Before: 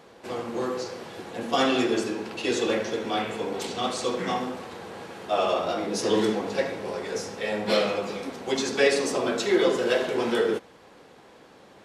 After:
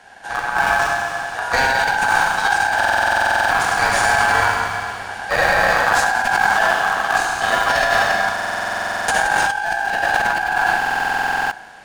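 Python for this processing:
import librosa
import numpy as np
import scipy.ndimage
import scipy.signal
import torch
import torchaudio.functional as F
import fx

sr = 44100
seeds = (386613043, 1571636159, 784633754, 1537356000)

p1 = fx.graphic_eq_31(x, sr, hz=(400, 800, 1250, 8000), db=(9, -11, -4, 10))
p2 = fx.echo_feedback(p1, sr, ms=103, feedback_pct=33, wet_db=-7)
p3 = fx.schmitt(p2, sr, flips_db=-22.0)
p4 = p2 + (p3 * librosa.db_to_amplitude(-3.0))
p5 = scipy.signal.sosfilt(scipy.signal.butter(2, 41.0, 'highpass', fs=sr, output='sos'), p4)
p6 = fx.high_shelf(p5, sr, hz=9700.0, db=-5.0)
p7 = fx.rev_schroeder(p6, sr, rt60_s=2.2, comb_ms=31, drr_db=-0.5)
p8 = p7 * np.sin(2.0 * np.pi * 1200.0 * np.arange(len(p7)) / sr)
p9 = fx.over_compress(p8, sr, threshold_db=-21.0, ratio=-1.0)
p10 = fx.buffer_glitch(p9, sr, at_s=(2.76, 8.34, 10.77), block=2048, repeats=15)
y = p10 * librosa.db_to_amplitude(4.5)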